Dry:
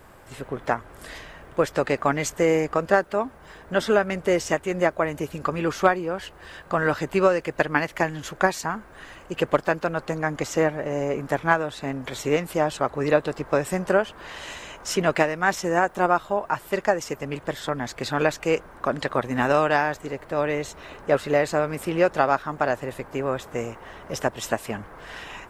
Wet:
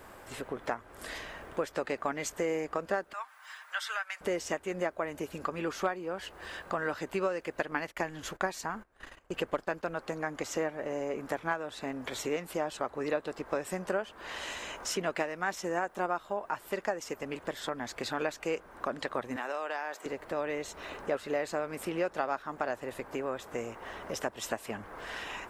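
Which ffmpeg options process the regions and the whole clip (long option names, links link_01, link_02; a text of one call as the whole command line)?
ffmpeg -i in.wav -filter_complex "[0:a]asettb=1/sr,asplit=3[link_01][link_02][link_03];[link_01]atrim=end=3.134[link_04];[link_02]atrim=start=3.13:end=4.21,asetpts=PTS-STARTPTS,afade=type=in:duration=0.004:curve=qsin,afade=type=out:start_time=1.076:duration=0.004:curve=qsin,highpass=frequency=1100:width=0.5412,highpass=frequency=1100:width=1.3066,aecho=1:1:6.5:0.36,atrim=end_sample=47628[link_05];[link_03]atrim=start=4.206[link_06];[link_04][link_05]acrossfade=duration=0.004:curve1=hsin:curve2=qsin[link_07];[link_07][link_06]acrossfade=duration=0.004:curve1=qsin:curve2=hsin,asettb=1/sr,asplit=3[link_08][link_09][link_10];[link_08]atrim=end=7.714[link_11];[link_09]atrim=start=7.71:end=9.95,asetpts=PTS-STARTPTS,afade=type=in:duration=0.004:curve=qsin,afade=type=out:start_time=2.236:duration=0.004:curve=qsin,lowshelf=frequency=63:gain=10,agate=range=-22dB:threshold=-40dB:ratio=16:release=100:detection=peak[link_12];[link_10]atrim=start=9.946[link_13];[link_11][link_12]acrossfade=duration=0.004:curve1=hsin:curve2=qsin[link_14];[link_14][link_13]acrossfade=duration=0.004:curve1=qsin:curve2=hsin,asettb=1/sr,asplit=3[link_15][link_16][link_17];[link_15]atrim=end=19.364[link_18];[link_16]atrim=start=19.36:end=20.06,asetpts=PTS-STARTPTS,afade=type=in:duration=0.004:curve=qsin,afade=type=out:start_time=0.696:duration=0.004:curve=qsin,highpass=430,acompressor=threshold=-27dB:ratio=2.5:attack=3.2:release=140:knee=1:detection=peak[link_19];[link_17]atrim=start=20.056[link_20];[link_18][link_19]acrossfade=duration=0.004:curve1=hsin:curve2=qsin[link_21];[link_21][link_20]acrossfade=duration=0.004:curve1=qsin:curve2=hsin,lowshelf=frequency=110:gain=-7,acompressor=threshold=-37dB:ratio=2,equalizer=frequency=140:width_type=o:width=0.4:gain=-7.5" out.wav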